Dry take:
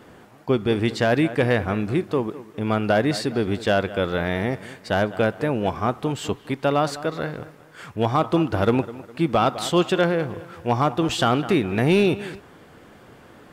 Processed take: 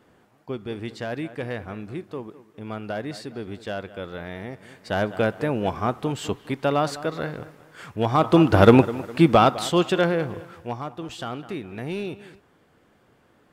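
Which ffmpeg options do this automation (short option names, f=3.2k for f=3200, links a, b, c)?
-af "volume=7dB,afade=t=in:st=4.57:d=0.53:silence=0.334965,afade=t=in:st=8.08:d=0.52:silence=0.375837,afade=t=out:st=9.12:d=0.53:silence=0.398107,afade=t=out:st=10.38:d=0.4:silence=0.266073"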